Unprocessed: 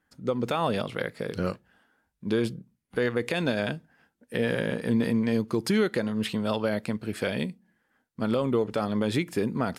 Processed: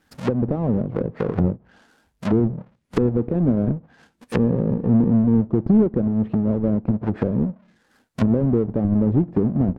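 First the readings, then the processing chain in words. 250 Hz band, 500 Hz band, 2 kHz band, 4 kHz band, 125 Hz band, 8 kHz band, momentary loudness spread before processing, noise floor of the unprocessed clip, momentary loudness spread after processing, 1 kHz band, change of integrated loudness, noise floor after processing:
+9.0 dB, +3.0 dB, -9.0 dB, under -10 dB, +11.5 dB, no reading, 8 LU, -76 dBFS, 8 LU, -1.0 dB, +7.0 dB, -65 dBFS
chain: square wave that keeps the level; low-pass that closes with the level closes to 350 Hz, closed at -22 dBFS; trim +6 dB

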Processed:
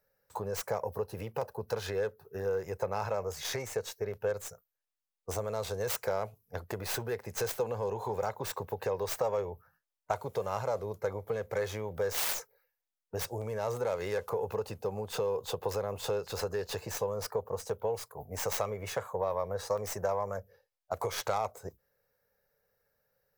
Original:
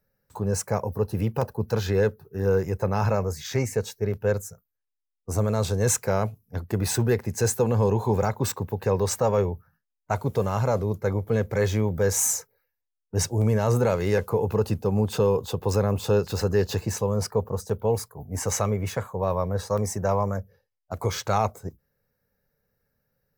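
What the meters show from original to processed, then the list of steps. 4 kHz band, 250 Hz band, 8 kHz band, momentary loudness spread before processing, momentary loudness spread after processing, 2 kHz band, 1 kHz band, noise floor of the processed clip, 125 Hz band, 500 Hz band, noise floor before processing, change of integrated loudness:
-4.5 dB, -17.0 dB, -11.5 dB, 7 LU, 6 LU, -6.0 dB, -6.5 dB, under -85 dBFS, -17.0 dB, -7.5 dB, -82 dBFS, -9.5 dB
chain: tracing distortion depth 0.23 ms; compression 6:1, threshold -28 dBFS, peak gain reduction 11 dB; resonant low shelf 370 Hz -9 dB, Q 1.5

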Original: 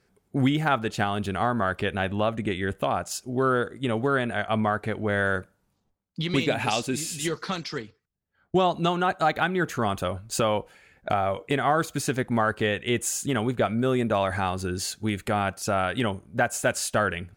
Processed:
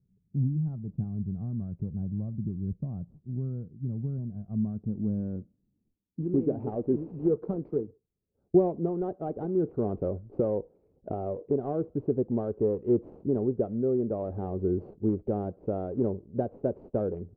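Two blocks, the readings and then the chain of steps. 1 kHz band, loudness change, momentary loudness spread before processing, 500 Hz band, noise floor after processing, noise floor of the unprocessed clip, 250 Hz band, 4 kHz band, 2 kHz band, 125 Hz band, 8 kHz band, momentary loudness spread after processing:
-16.5 dB, -4.5 dB, 6 LU, -2.5 dB, -75 dBFS, -73 dBFS, -1.5 dB, under -40 dB, under -35 dB, -1.5 dB, under -40 dB, 8 LU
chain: median filter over 25 samples; gain riding within 4 dB 0.5 s; low-pass sweep 160 Hz -> 430 Hz, 4.29–6.81 s; trim -4.5 dB

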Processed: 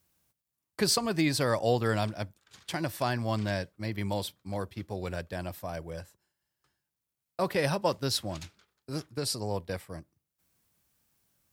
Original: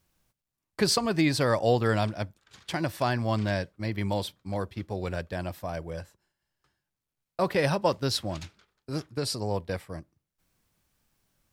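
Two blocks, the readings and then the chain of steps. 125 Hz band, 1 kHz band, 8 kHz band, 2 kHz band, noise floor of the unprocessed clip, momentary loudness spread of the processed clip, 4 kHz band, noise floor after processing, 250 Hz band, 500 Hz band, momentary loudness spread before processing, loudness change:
-3.0 dB, -3.0 dB, +1.0 dB, -2.5 dB, under -85 dBFS, 15 LU, -1.0 dB, under -85 dBFS, -3.0 dB, -3.0 dB, 15 LU, -2.5 dB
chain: high-pass 53 Hz; de-esser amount 40%; treble shelf 7.5 kHz +8.5 dB; trim -3 dB

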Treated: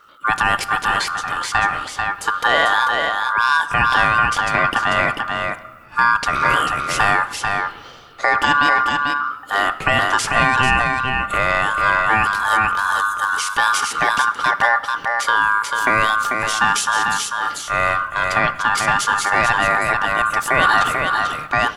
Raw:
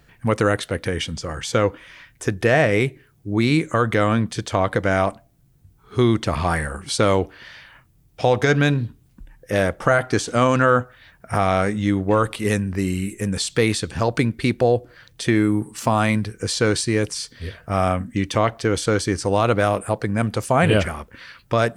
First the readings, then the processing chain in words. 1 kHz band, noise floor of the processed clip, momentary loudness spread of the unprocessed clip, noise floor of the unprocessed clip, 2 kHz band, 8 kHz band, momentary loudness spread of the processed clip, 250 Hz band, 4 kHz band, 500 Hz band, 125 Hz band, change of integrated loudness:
+9.0 dB, -37 dBFS, 8 LU, -57 dBFS, +10.5 dB, +3.5 dB, 6 LU, -10.0 dB, +6.0 dB, -6.5 dB, -9.5 dB, +3.5 dB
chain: bass shelf 110 Hz +9 dB; ring modulator 1.3 kHz; on a send: delay 442 ms -4.5 dB; on the sum: transient shaper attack 0 dB, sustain +6 dB; simulated room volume 3000 m³, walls mixed, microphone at 0.39 m; trim +2 dB

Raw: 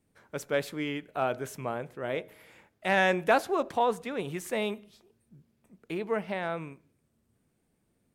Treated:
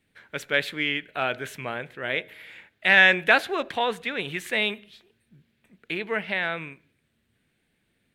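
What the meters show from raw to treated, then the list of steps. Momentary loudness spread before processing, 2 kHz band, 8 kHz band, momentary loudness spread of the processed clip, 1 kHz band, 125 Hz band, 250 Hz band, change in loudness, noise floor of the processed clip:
13 LU, +12.0 dB, 0.0 dB, 18 LU, +1.0 dB, 0.0 dB, 0.0 dB, +6.5 dB, -73 dBFS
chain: high-order bell 2.5 kHz +12.5 dB

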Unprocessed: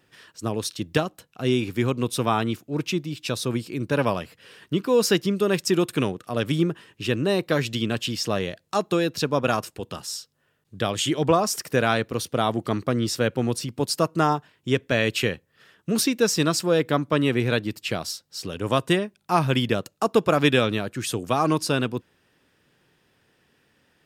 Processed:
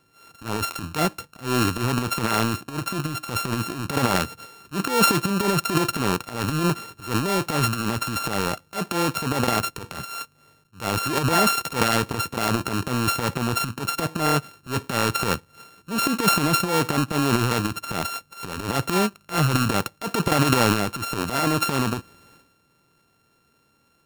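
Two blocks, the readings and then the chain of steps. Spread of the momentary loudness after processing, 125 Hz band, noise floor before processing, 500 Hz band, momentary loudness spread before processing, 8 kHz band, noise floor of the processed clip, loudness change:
11 LU, +1.5 dB, -68 dBFS, -4.0 dB, 9 LU, +2.5 dB, -64 dBFS, +1.0 dB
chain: sorted samples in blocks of 32 samples; transient shaper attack -11 dB, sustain +12 dB

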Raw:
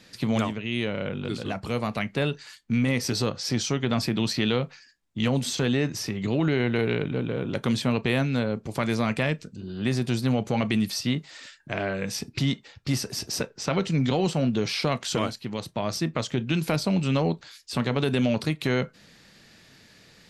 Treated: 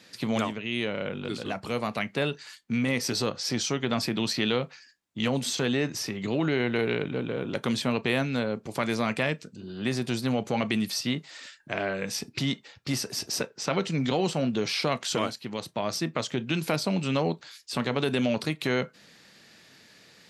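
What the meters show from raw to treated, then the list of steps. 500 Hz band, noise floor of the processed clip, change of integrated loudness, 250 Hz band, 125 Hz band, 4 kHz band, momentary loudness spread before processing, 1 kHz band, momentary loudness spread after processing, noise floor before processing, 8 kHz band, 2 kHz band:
-1.0 dB, -57 dBFS, -2.0 dB, -3.0 dB, -6.0 dB, 0.0 dB, 7 LU, -0.5 dB, 7 LU, -55 dBFS, 0.0 dB, 0.0 dB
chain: high-pass 230 Hz 6 dB/octave

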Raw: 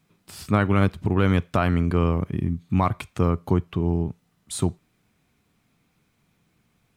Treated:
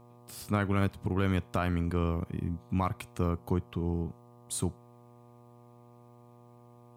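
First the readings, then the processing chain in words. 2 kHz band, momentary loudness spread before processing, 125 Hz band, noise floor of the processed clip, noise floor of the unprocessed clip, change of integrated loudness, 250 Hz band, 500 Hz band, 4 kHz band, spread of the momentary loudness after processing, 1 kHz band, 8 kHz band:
-8.0 dB, 7 LU, -8.5 dB, -56 dBFS, -68 dBFS, -8.5 dB, -8.5 dB, -8.5 dB, -7.0 dB, 7 LU, -8.5 dB, -2.5 dB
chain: treble shelf 7.8 kHz +10.5 dB; mains buzz 120 Hz, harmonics 10, -47 dBFS -4 dB/octave; trim -8.5 dB

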